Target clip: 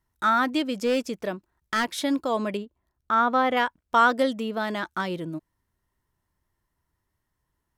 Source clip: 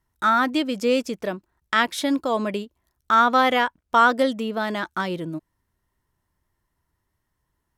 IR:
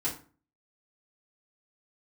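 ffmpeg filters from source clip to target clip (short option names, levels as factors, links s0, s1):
-filter_complex "[0:a]asettb=1/sr,asplit=3[s0][s1][s2];[s0]atrim=end=0.594[s3];[s1]atrim=start=0.59:end=1.89,asetpts=PTS-STARTPTS,afade=t=in:d=0.004:c=qsin,afade=t=out:st=1.296:d=0.004:c=qsin,asoftclip=type=hard:threshold=0.168[s4];[s2]atrim=start=1.886[s5];[s3][s4]acrossfade=d=0.004:c1=hsin:c2=qsin[s6];[s6][s5]acrossfade=d=0.004:c1=qsin:c2=hsin,asettb=1/sr,asplit=3[s7][s8][s9];[s7]atrim=end=2.574[s10];[s8]atrim=start=2.57:end=3.57,asetpts=PTS-STARTPTS,afade=t=in:d=0.004:c=qsin,afade=t=out:st=0.996:d=0.004:c=qsin,highshelf=f=2600:g=-12[s11];[s9]atrim=start=3.566[s12];[s10][s11]acrossfade=d=0.004:c1=hsin:c2=qsin[s13];[s13][s12]acrossfade=d=0.004:c1=qsin:c2=hsin,volume=0.75"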